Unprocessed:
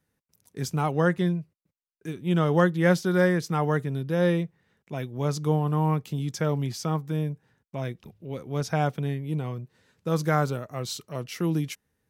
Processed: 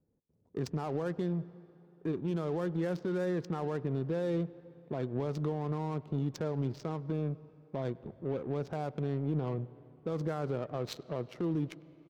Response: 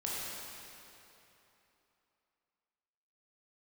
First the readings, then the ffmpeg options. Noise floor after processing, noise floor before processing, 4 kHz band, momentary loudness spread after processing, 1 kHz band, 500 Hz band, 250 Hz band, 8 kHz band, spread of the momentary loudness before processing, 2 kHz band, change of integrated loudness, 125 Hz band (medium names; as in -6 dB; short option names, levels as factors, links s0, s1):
-61 dBFS, -79 dBFS, -12.5 dB, 7 LU, -11.5 dB, -7.0 dB, -7.5 dB, under -15 dB, 15 LU, -16.5 dB, -9.0 dB, -9.0 dB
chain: -filter_complex "[0:a]firequalizer=gain_entry='entry(130,0);entry(380,7);entry(2000,-4);entry(4100,4)':delay=0.05:min_phase=1,adynamicsmooth=sensitivity=4:basefreq=540,alimiter=level_in=1.19:limit=0.0631:level=0:latency=1:release=127,volume=0.841,asplit=2[s0][s1];[1:a]atrim=start_sample=2205,lowpass=4300,adelay=99[s2];[s1][s2]afir=irnorm=-1:irlink=0,volume=0.075[s3];[s0][s3]amix=inputs=2:normalize=0"